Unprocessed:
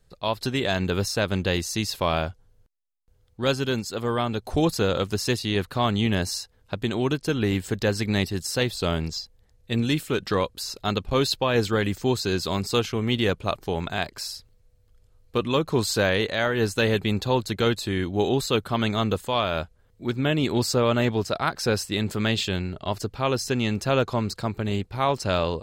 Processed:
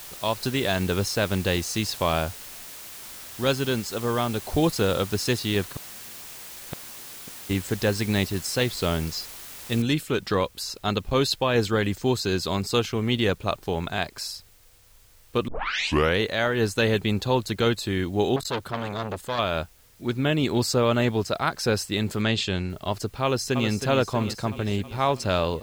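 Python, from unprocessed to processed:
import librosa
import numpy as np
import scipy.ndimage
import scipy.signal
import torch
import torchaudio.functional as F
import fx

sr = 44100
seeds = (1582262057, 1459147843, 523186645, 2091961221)

y = fx.gate_flip(x, sr, shuts_db=-20.0, range_db=-38, at=(5.71, 7.49), fade=0.02)
y = fx.noise_floor_step(y, sr, seeds[0], at_s=9.82, before_db=-41, after_db=-58, tilt_db=0.0)
y = fx.transformer_sat(y, sr, knee_hz=1600.0, at=(18.36, 19.39))
y = fx.lowpass(y, sr, hz=8100.0, slope=12, at=(22.22, 22.7))
y = fx.echo_throw(y, sr, start_s=23.23, length_s=0.47, ms=320, feedback_pct=65, wet_db=-8.0)
y = fx.edit(y, sr, fx.tape_start(start_s=15.48, length_s=0.69), tone=tone)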